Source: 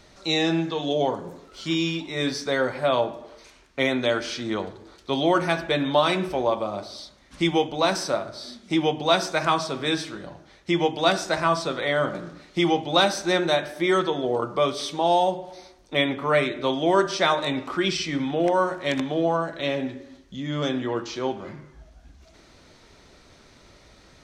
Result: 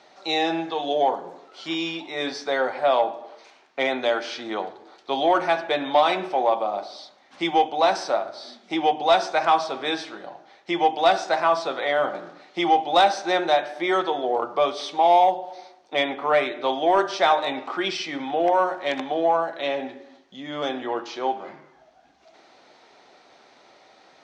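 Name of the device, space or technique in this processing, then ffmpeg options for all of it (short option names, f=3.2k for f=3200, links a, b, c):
intercom: -af "highpass=350,lowpass=4.9k,equalizer=f=770:t=o:w=0.38:g=10.5,asoftclip=type=tanh:threshold=-7dB"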